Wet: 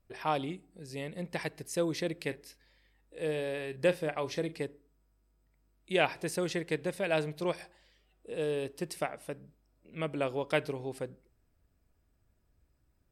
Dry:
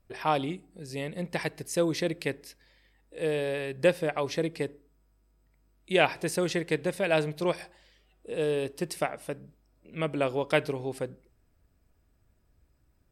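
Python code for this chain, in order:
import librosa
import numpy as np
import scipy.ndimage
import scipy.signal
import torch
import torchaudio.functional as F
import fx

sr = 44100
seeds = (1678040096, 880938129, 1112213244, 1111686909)

y = fx.doubler(x, sr, ms=39.0, db=-14.0, at=(2.22, 4.57))
y = y * 10.0 ** (-4.5 / 20.0)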